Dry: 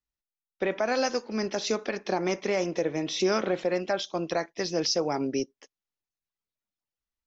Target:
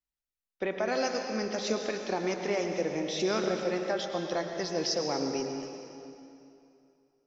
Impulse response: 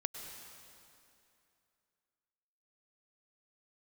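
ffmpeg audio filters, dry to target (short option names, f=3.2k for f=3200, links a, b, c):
-filter_complex "[0:a]asettb=1/sr,asplit=3[a][b][c];[a]atrim=end=3.804[d];[b]atrim=start=3.8:end=4.68,asetpts=PTS-STARTPTS,afade=t=in:d=0.004:c=qsin,afade=t=out:st=0.876:d=0.004:c=qsin,bandreject=f=2.4k:w=9.9[e];[c]atrim=start=4.676[f];[d][e]acrossfade=d=0.004:c1=hsin:c2=qsin[g];[g][f]acrossfade=d=0.004:c1=qsin:c2=hsin[h];[1:a]atrim=start_sample=2205,asetrate=43218,aresample=44100[i];[h][i]afir=irnorm=-1:irlink=0,volume=-3dB"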